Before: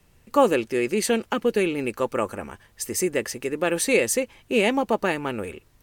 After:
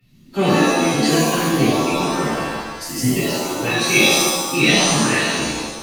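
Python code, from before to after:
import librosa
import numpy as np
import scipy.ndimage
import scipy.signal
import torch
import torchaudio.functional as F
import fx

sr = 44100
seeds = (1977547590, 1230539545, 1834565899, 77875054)

p1 = fx.spec_quant(x, sr, step_db=30)
p2 = fx.graphic_eq_10(p1, sr, hz=(125, 250, 500, 1000, 2000, 4000, 8000), db=(-8, 5, -7, -11, 4, 8, -10))
p3 = fx.rider(p2, sr, range_db=4, speed_s=2.0)
p4 = p2 + (p3 * librosa.db_to_amplitude(1.0))
p5 = fx.pitch_keep_formants(p4, sr, semitones=-6.5)
p6 = fx.rev_shimmer(p5, sr, seeds[0], rt60_s=1.0, semitones=7, shimmer_db=-2, drr_db=-10.0)
y = p6 * librosa.db_to_amplitude(-10.5)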